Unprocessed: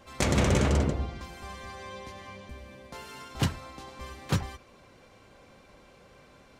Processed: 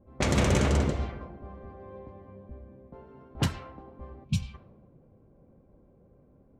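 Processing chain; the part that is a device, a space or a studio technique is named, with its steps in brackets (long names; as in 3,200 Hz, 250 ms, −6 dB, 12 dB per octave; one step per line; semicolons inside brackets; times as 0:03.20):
time-frequency box erased 0:04.24–0:04.54, 240–2,200 Hz
filtered reverb send (on a send at −12 dB: high-pass filter 590 Hz 6 dB per octave + low-pass filter 6,700 Hz + convolution reverb RT60 3.3 s, pre-delay 103 ms)
on the sum: low-pass that shuts in the quiet parts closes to 340 Hz, open at −22 dBFS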